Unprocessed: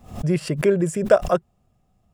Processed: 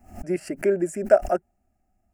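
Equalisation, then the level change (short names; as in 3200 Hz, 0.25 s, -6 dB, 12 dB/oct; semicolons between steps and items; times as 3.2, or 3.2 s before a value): dynamic EQ 500 Hz, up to +6 dB, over -30 dBFS, Q 1.3; fixed phaser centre 720 Hz, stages 8; -3.0 dB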